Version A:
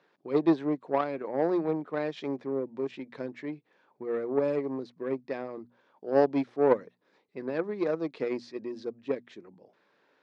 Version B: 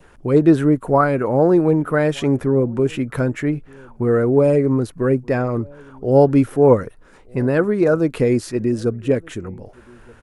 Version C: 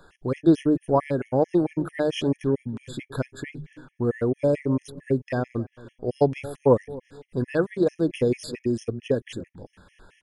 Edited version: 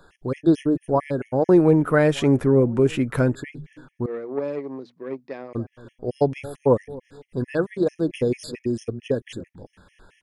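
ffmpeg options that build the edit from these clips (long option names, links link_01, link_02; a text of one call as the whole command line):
ffmpeg -i take0.wav -i take1.wav -i take2.wav -filter_complex "[2:a]asplit=3[link_01][link_02][link_03];[link_01]atrim=end=1.492[link_04];[1:a]atrim=start=1.488:end=3.352[link_05];[link_02]atrim=start=3.348:end=4.062[link_06];[0:a]atrim=start=4.058:end=5.532[link_07];[link_03]atrim=start=5.528[link_08];[link_04][link_05]acrossfade=duration=0.004:curve1=hsin:curve2=hsin[link_09];[link_09][link_06]acrossfade=duration=0.004:curve1=hsin:curve2=hsin[link_10];[link_10][link_07]acrossfade=duration=0.004:curve1=hsin:curve2=hsin[link_11];[link_11][link_08]acrossfade=duration=0.004:curve1=hsin:curve2=hsin" out.wav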